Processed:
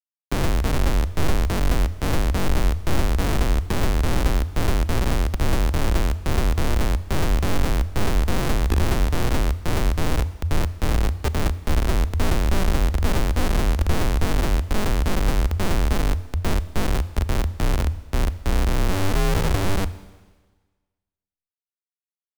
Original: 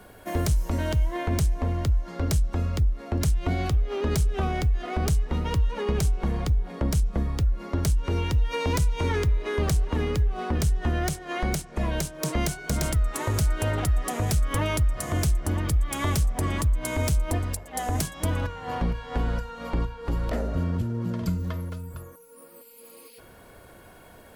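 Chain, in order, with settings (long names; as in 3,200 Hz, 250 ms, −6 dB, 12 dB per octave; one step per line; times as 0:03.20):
phase distortion by the signal itself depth 0.59 ms
Butterworth low-pass 11,000 Hz 96 dB per octave
gate on every frequency bin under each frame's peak −15 dB strong
spectral tilt −2 dB per octave
comparator with hysteresis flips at −23 dBFS
frequency shifter −84 Hz
four-comb reverb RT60 1.5 s, combs from 30 ms, DRR 15.5 dB
wrong playback speed 44.1 kHz file played as 48 kHz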